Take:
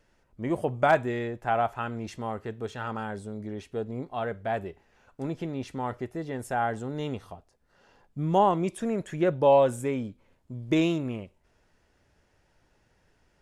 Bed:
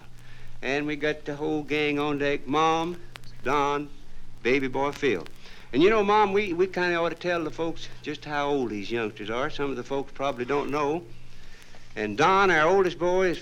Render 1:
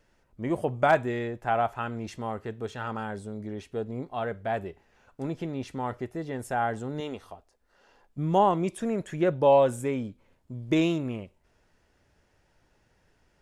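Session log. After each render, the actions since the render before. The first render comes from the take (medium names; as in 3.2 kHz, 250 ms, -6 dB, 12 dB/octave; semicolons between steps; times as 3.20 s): 7.00–8.18 s: peaking EQ 130 Hz -13 dB 1.1 oct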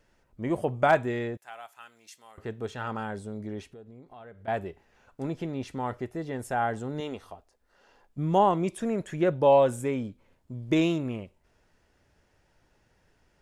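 1.37–2.38 s: differentiator; 3.66–4.48 s: compression 4:1, threshold -47 dBFS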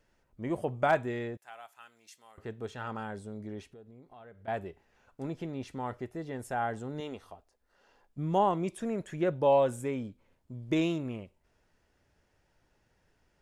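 trim -4.5 dB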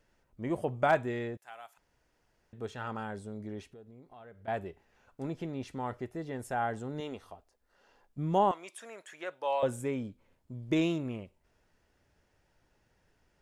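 1.78–2.53 s: room tone; 8.51–9.63 s: high-pass 930 Hz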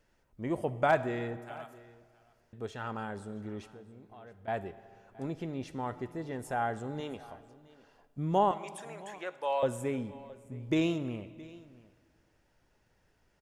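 delay 669 ms -21 dB; algorithmic reverb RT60 2.1 s, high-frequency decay 0.75×, pre-delay 15 ms, DRR 15 dB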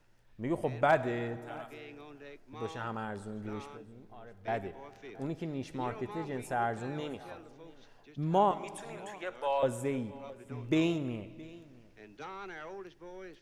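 add bed -24 dB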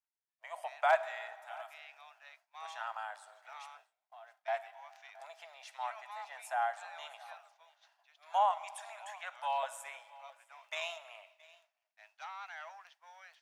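Chebyshev high-pass 650 Hz, order 6; expander -58 dBFS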